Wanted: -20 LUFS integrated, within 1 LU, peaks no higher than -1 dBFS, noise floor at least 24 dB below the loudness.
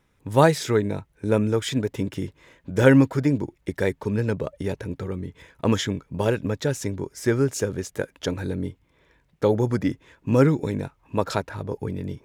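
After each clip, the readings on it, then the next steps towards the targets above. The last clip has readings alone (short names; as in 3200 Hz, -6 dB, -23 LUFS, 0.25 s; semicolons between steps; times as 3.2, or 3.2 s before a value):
loudness -24.5 LUFS; peak -4.0 dBFS; loudness target -20.0 LUFS
-> gain +4.5 dB; limiter -1 dBFS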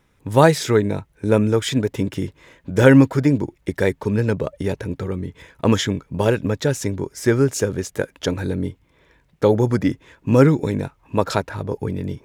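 loudness -20.0 LUFS; peak -1.0 dBFS; noise floor -61 dBFS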